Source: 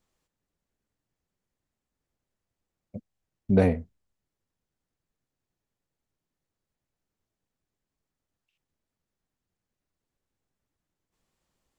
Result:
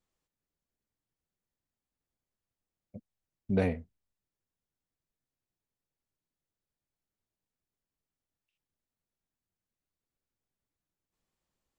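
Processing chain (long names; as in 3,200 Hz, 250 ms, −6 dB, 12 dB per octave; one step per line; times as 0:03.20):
dynamic equaliser 2,800 Hz, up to +6 dB, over −46 dBFS, Q 0.83
level −7.5 dB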